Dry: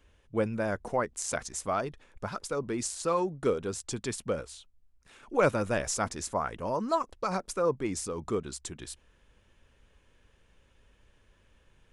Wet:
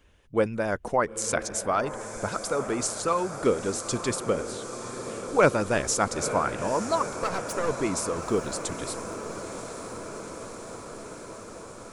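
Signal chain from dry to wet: 7.12–7.76 half-wave gain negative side -12 dB; harmonic-percussive split percussive +6 dB; diffused feedback echo 0.932 s, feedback 74%, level -10.5 dB

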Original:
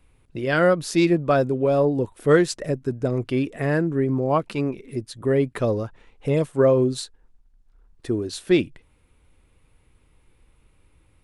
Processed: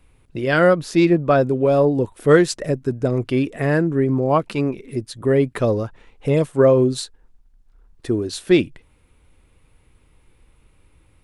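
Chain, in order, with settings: 0.79–1.46 high shelf 3800 Hz -> 6300 Hz -9 dB; gain +3.5 dB

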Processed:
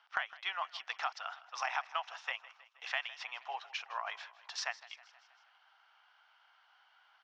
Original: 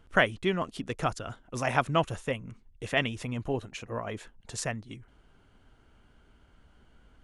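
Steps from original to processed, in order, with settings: Chebyshev band-pass 770–5500 Hz, order 4; compressor 16:1, threshold -34 dBFS, peak gain reduction 16 dB; feedback echo 0.159 s, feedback 58%, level -18.5 dB; gain +2.5 dB

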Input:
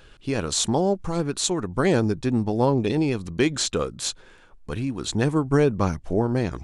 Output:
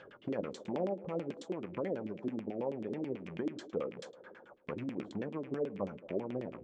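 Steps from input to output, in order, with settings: rattling part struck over -38 dBFS, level -24 dBFS; dynamic EQ 1500 Hz, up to -5 dB, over -41 dBFS, Q 1.1; compressor 6:1, threshold -33 dBFS, peak gain reduction 17.5 dB; flange 0.64 Hz, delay 7.4 ms, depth 4.5 ms, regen +74%; LFO low-pass saw down 9.2 Hz 260–3500 Hz; on a send: delay with a stepping band-pass 0.11 s, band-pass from 270 Hz, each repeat 0.7 oct, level -12 dB; on the sum: vocal rider 2 s; speaker cabinet 180–9600 Hz, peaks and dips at 190 Hz +4 dB, 560 Hz +8 dB, 2600 Hz -9 dB, 4000 Hz -9 dB, 7400 Hz +3 dB

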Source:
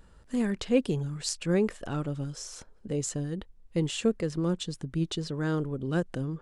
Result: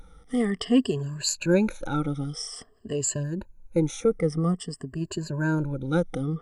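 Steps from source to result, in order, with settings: moving spectral ripple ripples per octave 1.4, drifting -0.5 Hz, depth 21 dB; 3.23–5.59 bell 3500 Hz -12.5 dB 0.78 oct

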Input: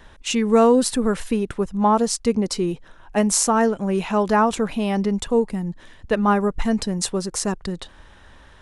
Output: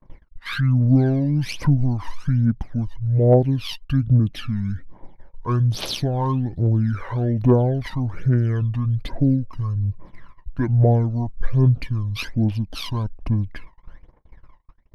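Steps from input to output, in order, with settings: median filter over 3 samples; speed mistake 78 rpm record played at 45 rpm; phaser 1.2 Hz, delay 1.1 ms, feedback 76%; bell 4600 Hz -5.5 dB 1.5 oct; gate -34 dBFS, range -40 dB; high shelf 6600 Hz -10 dB; in parallel at +1 dB: compressor, threshold -19 dBFS, peak gain reduction 16 dB; on the sum: gain -9 dB

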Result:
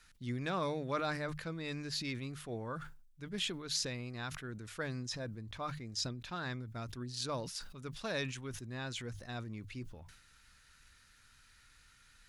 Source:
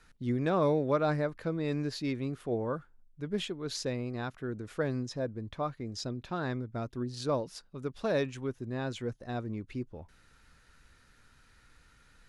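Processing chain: passive tone stack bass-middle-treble 5-5-5; notches 50/100/150 Hz; sustainer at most 64 dB/s; gain +9.5 dB

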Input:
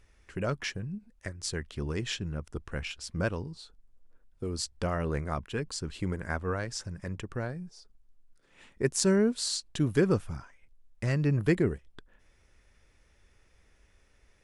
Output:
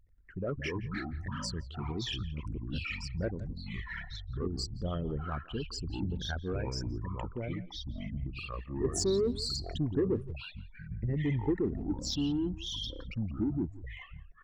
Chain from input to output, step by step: formant sharpening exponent 3; in parallel at -5 dB: soft clip -26 dBFS, distortion -10 dB; on the sum: echoes that change speed 91 ms, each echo -5 st, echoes 3; speakerphone echo 0.17 s, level -17 dB; gain -7 dB

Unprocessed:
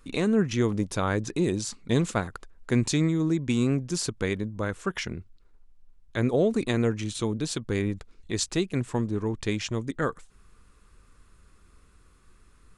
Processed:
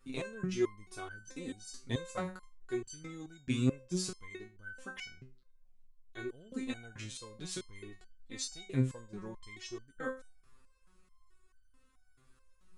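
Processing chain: de-hum 190.1 Hz, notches 6; stepped resonator 4.6 Hz 130–1500 Hz; gain +3.5 dB

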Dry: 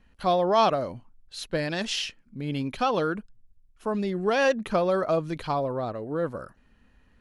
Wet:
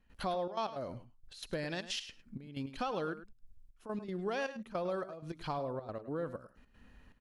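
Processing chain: compressor 2.5:1, threshold -41 dBFS, peak gain reduction 16.5 dB; step gate ".xxxx.x.xxx..x" 158 bpm -12 dB; on a send: echo 0.103 s -13.5 dB; on the sum: gain +1 dB

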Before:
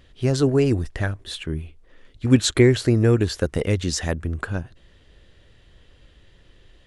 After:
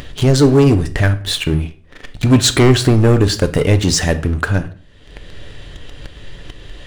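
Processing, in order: sample leveller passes 3; upward compressor, threshold -12 dBFS; on a send: reverb RT60 0.50 s, pre-delay 7 ms, DRR 9 dB; on the sum: gain -1 dB

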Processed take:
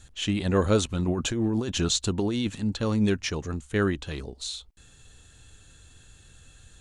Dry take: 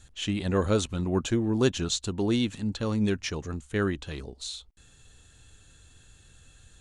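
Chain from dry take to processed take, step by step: 1.08–2.5 negative-ratio compressor -28 dBFS, ratio -1; gain +2.5 dB

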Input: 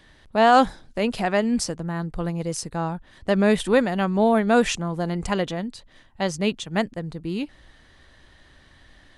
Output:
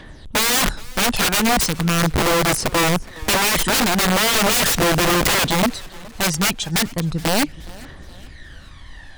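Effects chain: phaser 0.38 Hz, delay 1.3 ms, feedback 61%; wrapped overs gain 20.5 dB; warbling echo 0.419 s, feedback 44%, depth 107 cents, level -22 dB; gain +8 dB

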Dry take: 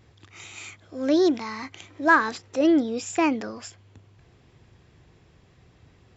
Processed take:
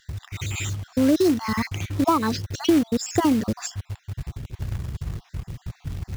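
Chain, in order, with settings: random spectral dropouts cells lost 39%; tone controls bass +14 dB, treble +3 dB; compressor 4:1, threshold -28 dBFS, peak gain reduction 13.5 dB; low shelf 110 Hz +8.5 dB; short-mantissa float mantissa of 2-bit; gain +9 dB

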